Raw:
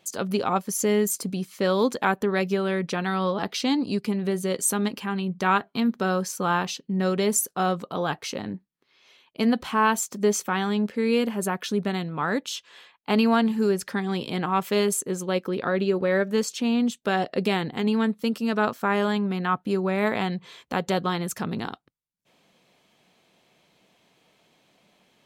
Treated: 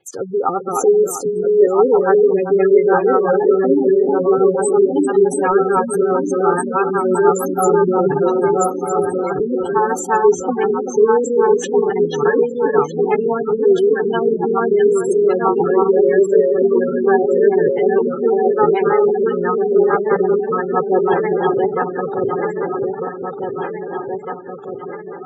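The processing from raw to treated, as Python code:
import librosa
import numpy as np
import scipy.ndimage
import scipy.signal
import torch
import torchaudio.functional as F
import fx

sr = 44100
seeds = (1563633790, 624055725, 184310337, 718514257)

y = fx.reverse_delay_fb(x, sr, ms=626, feedback_pct=76, wet_db=-1)
y = fx.leveller(y, sr, passes=1)
y = fx.low_shelf(y, sr, hz=270.0, db=5.5, at=(7.57, 8.28))
y = fx.rotary(y, sr, hz=6.0)
y = fx.echo_feedback(y, sr, ms=391, feedback_pct=29, wet_db=-8.5)
y = fx.spec_gate(y, sr, threshold_db=-15, keep='strong')
y = fx.high_shelf(y, sr, hz=3500.0, db=-7.5)
y = y + 0.9 * np.pad(y, (int(2.4 * sr / 1000.0), 0))[:len(y)]
y = y * librosa.db_to_amplitude(3.5)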